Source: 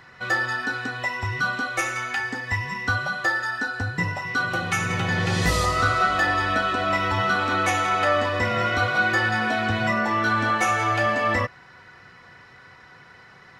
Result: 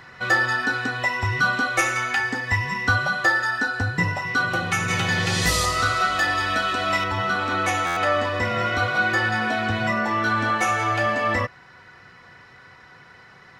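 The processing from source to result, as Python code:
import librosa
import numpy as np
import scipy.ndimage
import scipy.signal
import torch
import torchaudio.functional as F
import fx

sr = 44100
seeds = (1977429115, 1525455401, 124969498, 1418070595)

y = fx.high_shelf(x, sr, hz=2300.0, db=9.5, at=(4.88, 7.04))
y = fx.rider(y, sr, range_db=10, speed_s=2.0)
y = fx.buffer_glitch(y, sr, at_s=(7.86,), block=512, repeats=8)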